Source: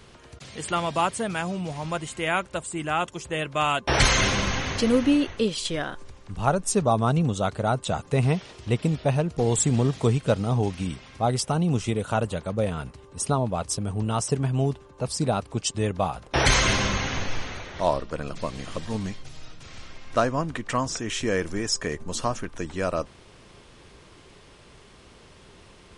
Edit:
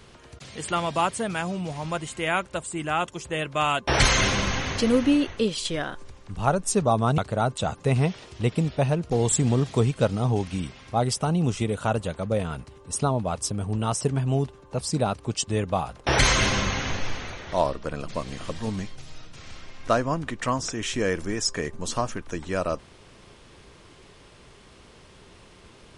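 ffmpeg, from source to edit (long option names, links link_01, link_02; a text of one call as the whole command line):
ffmpeg -i in.wav -filter_complex "[0:a]asplit=2[link_01][link_02];[link_01]atrim=end=7.182[link_03];[link_02]atrim=start=7.448[link_04];[link_03][link_04]acrossfade=duration=0.004:curve1=hsin:curve2=hsin" out.wav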